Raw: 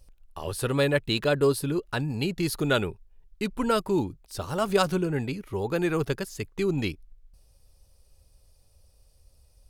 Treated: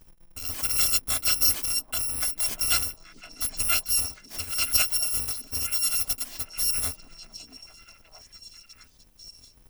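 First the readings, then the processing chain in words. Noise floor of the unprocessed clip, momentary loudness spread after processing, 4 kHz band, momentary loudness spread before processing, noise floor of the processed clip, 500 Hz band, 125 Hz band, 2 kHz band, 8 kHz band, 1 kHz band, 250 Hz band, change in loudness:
−61 dBFS, 12 LU, +7.0 dB, 10 LU, −56 dBFS, −22.0 dB, −13.5 dB, −2.5 dB, +16.0 dB, −8.0 dB, −21.0 dB, +3.5 dB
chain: samples in bit-reversed order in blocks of 256 samples
echo through a band-pass that steps 650 ms, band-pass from 270 Hz, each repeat 1.4 octaves, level −6 dB

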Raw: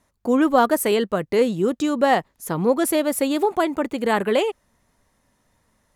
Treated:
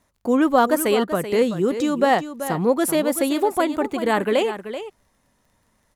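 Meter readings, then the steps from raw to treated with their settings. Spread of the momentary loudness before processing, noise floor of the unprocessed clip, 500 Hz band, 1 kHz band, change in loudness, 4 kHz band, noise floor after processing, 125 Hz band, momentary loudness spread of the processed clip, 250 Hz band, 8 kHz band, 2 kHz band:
5 LU, −68 dBFS, 0.0 dB, +0.5 dB, 0.0 dB, +0.5 dB, −66 dBFS, +0.5 dB, 8 LU, +0.5 dB, +0.5 dB, +0.5 dB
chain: surface crackle 26 per second −50 dBFS
single-tap delay 383 ms −11 dB

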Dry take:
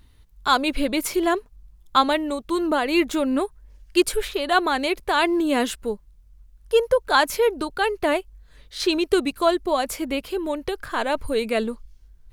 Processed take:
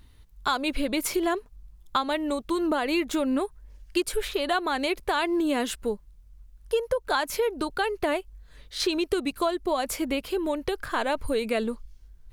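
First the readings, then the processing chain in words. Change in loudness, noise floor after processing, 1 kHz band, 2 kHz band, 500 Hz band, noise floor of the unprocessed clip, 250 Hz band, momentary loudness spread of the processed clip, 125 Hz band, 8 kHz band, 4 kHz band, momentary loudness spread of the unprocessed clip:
−5.0 dB, −54 dBFS, −6.0 dB, −5.5 dB, −5.0 dB, −53 dBFS, −4.0 dB, 5 LU, can't be measured, −3.0 dB, −5.0 dB, 8 LU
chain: downward compressor 6 to 1, threshold −22 dBFS, peak gain reduction 11 dB

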